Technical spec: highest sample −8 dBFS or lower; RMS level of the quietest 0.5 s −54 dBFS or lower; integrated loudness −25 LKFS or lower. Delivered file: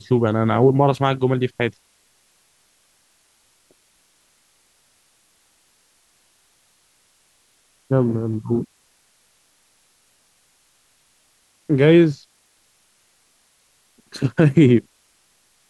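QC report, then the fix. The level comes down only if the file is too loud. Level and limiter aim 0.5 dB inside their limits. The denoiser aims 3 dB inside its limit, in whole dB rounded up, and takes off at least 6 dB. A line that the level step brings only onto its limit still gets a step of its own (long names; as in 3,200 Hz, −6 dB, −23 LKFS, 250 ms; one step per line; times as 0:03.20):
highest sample −3.5 dBFS: out of spec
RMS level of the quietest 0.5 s −61 dBFS: in spec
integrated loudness −18.0 LKFS: out of spec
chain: level −7.5 dB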